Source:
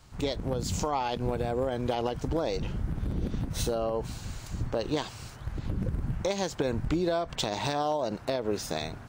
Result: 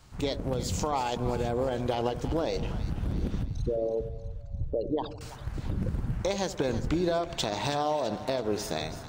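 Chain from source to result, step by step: 3.43–5.21 s: resonances exaggerated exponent 3; two-band feedback delay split 730 Hz, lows 84 ms, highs 329 ms, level -12 dB

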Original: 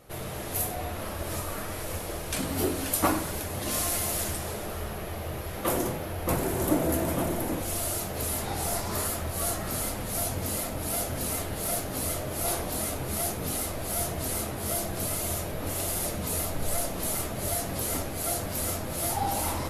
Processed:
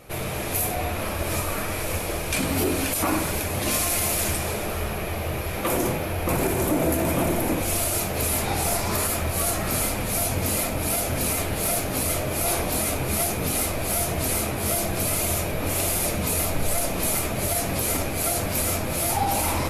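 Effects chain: peaking EQ 2.4 kHz +8.5 dB 0.22 oct; peak limiter -20 dBFS, peak gain reduction 10.5 dB; trim +6.5 dB

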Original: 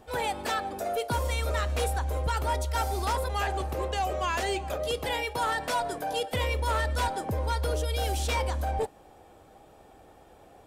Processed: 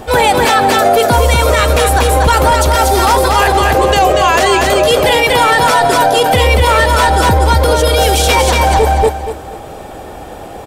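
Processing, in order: on a send: feedback delay 237 ms, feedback 28%, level -4 dB; on the sum: loudness maximiser +24.5 dB; trim -1 dB

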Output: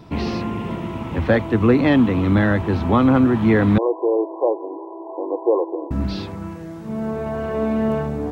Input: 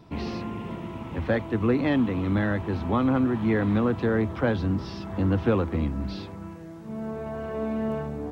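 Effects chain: 3.78–5.91 s: brick-wall FIR band-pass 310–1100 Hz; trim +8 dB

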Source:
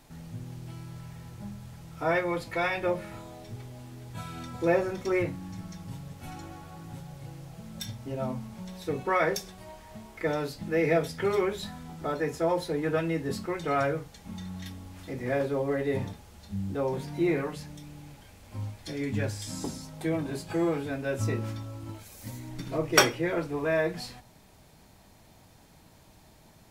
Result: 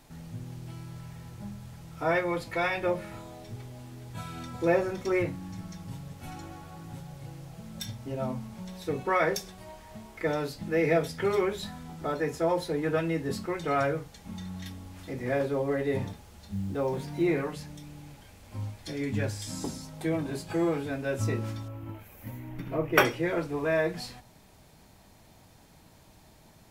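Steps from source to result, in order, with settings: 16.08–17.22 s: companded quantiser 8-bit; 21.68–23.05 s: high-order bell 6.1 kHz -14 dB

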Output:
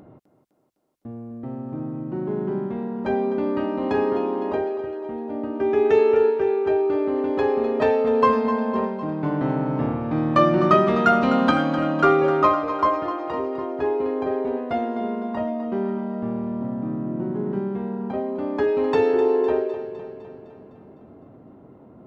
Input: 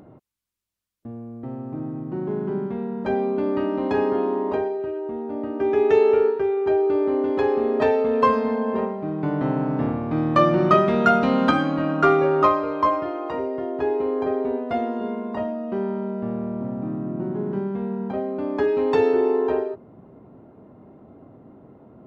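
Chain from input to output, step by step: thinning echo 254 ms, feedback 59%, high-pass 190 Hz, level -11 dB

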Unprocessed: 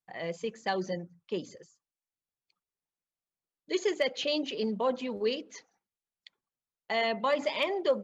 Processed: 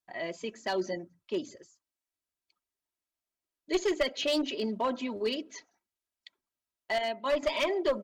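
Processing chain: 6.98–7.43 s: gate -27 dBFS, range -9 dB; comb 3.1 ms, depth 60%; one-sided clip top -24 dBFS

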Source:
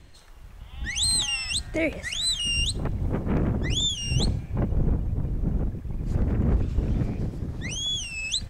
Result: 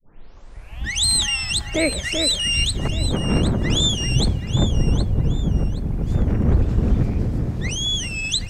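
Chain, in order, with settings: tape start-up on the opening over 0.85 s; echo whose repeats swap between lows and highs 385 ms, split 2 kHz, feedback 52%, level -5 dB; trim +5 dB

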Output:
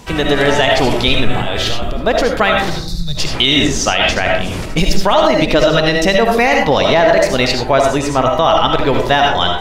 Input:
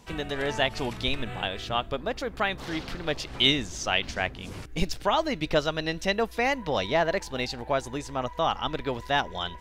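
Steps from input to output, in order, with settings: 1.42–1.98 s: compressor with a negative ratio -38 dBFS, ratio -1; 2.70–3.18 s: time-frequency box 210–3500 Hz -27 dB; algorithmic reverb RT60 0.53 s, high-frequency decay 0.35×, pre-delay 35 ms, DRR 2.5 dB; loudness maximiser +16.5 dB; trim -1 dB

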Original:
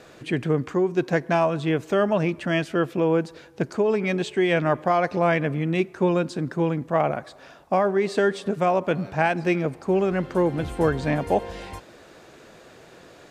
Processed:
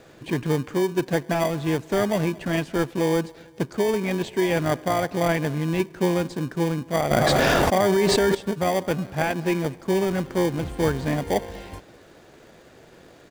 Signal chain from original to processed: in parallel at -4 dB: sample-and-hold 33×; on the sum: feedback delay 220 ms, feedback 31%, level -24 dB; 7.11–8.35 s: level flattener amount 100%; trim -4 dB

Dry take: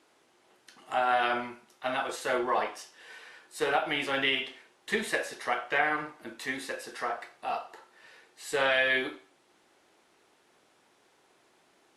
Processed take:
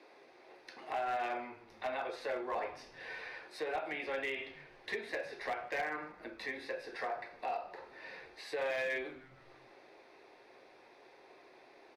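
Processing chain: reverberation RT60 0.30 s, pre-delay 3 ms, DRR 10 dB; compression 2.5:1, threshold -44 dBFS, peak gain reduction 18 dB; three-band isolator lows -20 dB, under 480 Hz, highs -17 dB, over 2.8 kHz; overload inside the chain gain 35.5 dB; frequency-shifting echo 154 ms, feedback 65%, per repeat -130 Hz, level -23 dB; trim +5.5 dB

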